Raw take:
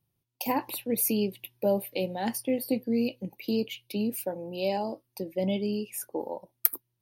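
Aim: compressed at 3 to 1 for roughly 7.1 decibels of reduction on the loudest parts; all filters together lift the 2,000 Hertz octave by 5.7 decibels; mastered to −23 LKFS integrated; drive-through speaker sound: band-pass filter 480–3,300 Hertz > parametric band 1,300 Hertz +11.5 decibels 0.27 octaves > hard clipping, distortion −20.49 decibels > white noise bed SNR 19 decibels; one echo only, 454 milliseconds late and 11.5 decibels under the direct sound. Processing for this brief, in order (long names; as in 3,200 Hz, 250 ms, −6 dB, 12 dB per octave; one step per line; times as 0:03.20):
parametric band 2,000 Hz +7.5 dB
downward compressor 3 to 1, threshold −29 dBFS
band-pass filter 480–3,300 Hz
parametric band 1,300 Hz +11.5 dB 0.27 octaves
single-tap delay 454 ms −11.5 dB
hard clipping −27.5 dBFS
white noise bed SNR 19 dB
level +15.5 dB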